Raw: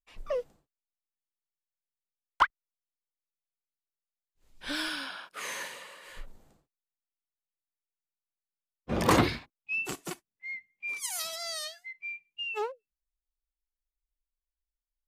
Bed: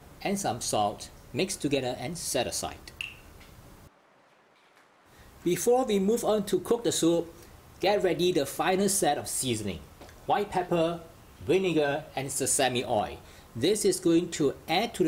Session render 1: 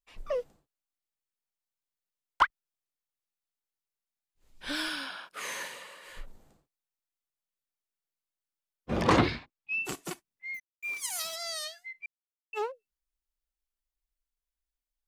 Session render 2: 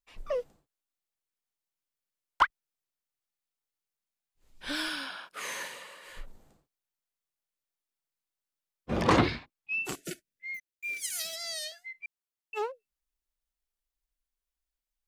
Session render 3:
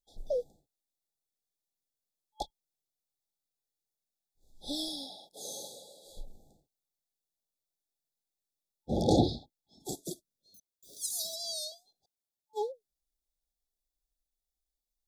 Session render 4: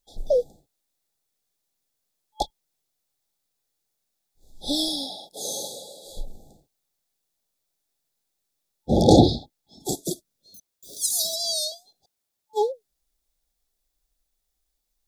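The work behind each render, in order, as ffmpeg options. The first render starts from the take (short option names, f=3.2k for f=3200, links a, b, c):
-filter_complex "[0:a]asplit=3[a][b][c];[a]afade=t=out:st=9:d=0.02[d];[b]lowpass=5.2k,afade=t=in:st=9:d=0.02,afade=t=out:st=9.79:d=0.02[e];[c]afade=t=in:st=9.79:d=0.02[f];[d][e][f]amix=inputs=3:normalize=0,asettb=1/sr,asplit=3[g][h][i];[g]atrim=end=10.544[j];[h]atrim=start=10.54:end=11.34,asetpts=PTS-STARTPTS,afade=t=in:d=0.004:c=qsin,afade=t=out:st=0.796:d=0.004:c=qsin,acrusher=bits=7:mix=0:aa=0.5[k];[i]atrim=start=11.336[l];[j][k]acrossfade=d=0.004:c1=hsin:c2=qsin[m];[m][l]acrossfade=d=0.004:c1=qsin:c2=hsin,asplit=3[n][o][p];[n]atrim=end=12.06,asetpts=PTS-STARTPTS,afade=t=out:st=12.056:d=0.004:c=hsin[q];[o]atrim=start=12.06:end=12.53,asetpts=PTS-STARTPTS,volume=0[r];[p]atrim=start=12.53,asetpts=PTS-STARTPTS,afade=t=in:d=0.004:c=hsin[s];[q][r][s]concat=n=3:v=0:a=1"
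-filter_complex "[0:a]asettb=1/sr,asplit=3[a][b][c];[a]atrim=end=9.954[d];[b]atrim=start=9.95:end=11.72,asetpts=PTS-STARTPTS,afade=t=in:d=0.004:c=qsin,afade=t=out:st=1.766:d=0.004:c=qsin,asuperstop=centerf=960:order=12:qfactor=1.3[e];[c]atrim=start=11.716[f];[d][e]acrossfade=d=0.004:c1=hsin:c2=qsin[g];[g][f]acrossfade=d=0.004:c1=qsin:c2=hsin"
-af "afftfilt=real='re*(1-between(b*sr/4096,870,3300))':imag='im*(1-between(b*sr/4096,870,3300))':win_size=4096:overlap=0.75"
-af "volume=11dB,alimiter=limit=-2dB:level=0:latency=1"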